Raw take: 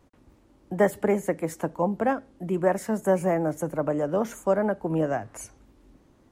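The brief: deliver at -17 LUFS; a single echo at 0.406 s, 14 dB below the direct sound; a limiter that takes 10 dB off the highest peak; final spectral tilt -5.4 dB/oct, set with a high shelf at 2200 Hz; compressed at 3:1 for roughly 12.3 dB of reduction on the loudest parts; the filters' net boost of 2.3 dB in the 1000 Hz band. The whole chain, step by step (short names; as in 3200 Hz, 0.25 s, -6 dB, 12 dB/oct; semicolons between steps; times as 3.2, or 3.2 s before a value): bell 1000 Hz +4.5 dB; high shelf 2200 Hz -7.5 dB; compressor 3:1, threshold -33 dBFS; limiter -29.5 dBFS; echo 0.406 s -14 dB; gain +23 dB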